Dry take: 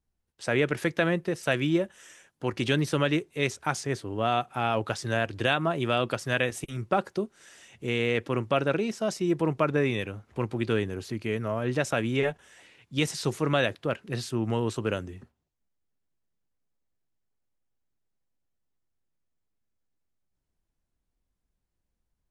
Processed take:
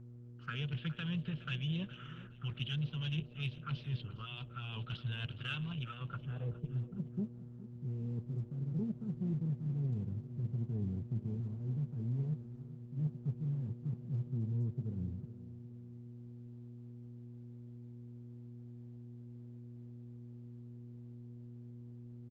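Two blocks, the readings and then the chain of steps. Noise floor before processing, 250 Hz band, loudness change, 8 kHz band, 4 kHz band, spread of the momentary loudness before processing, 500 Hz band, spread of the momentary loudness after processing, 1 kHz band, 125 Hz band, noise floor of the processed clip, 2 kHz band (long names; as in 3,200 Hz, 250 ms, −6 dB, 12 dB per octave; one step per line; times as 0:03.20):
−81 dBFS, −10.5 dB, −11.5 dB, below −30 dB, −11.5 dB, 8 LU, −26.0 dB, 14 LU, −23.0 dB, −3.0 dB, −52 dBFS, −18.5 dB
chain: drawn EQ curve 100 Hz 0 dB, 150 Hz +9 dB, 300 Hz −21 dB, 450 Hz −12 dB, 630 Hz −25 dB, 1,300 Hz +13 dB, 2,000 Hz −18 dB, 3,000 Hz +2 dB, 7,300 Hz −17 dB, 14,000 Hz −27 dB
reversed playback
downward compressor 5 to 1, threshold −35 dBFS, peak gain reduction 17.5 dB
reversed playback
hard clipping −28 dBFS, distortion −28 dB
hum with harmonics 120 Hz, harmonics 5, −51 dBFS −7 dB per octave
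phaser swept by the level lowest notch 530 Hz, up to 1,300 Hz, full sweep at −33.5 dBFS
low-pass filter sweep 3,000 Hz → 300 Hz, 0:05.76–0:06.80
harmonic generator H 3 −44 dB, 5 −29 dB, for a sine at −23.5 dBFS
on a send: repeating echo 415 ms, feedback 33%, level −15.5 dB
on the sum: level −1 dB
Opus 12 kbit/s 48,000 Hz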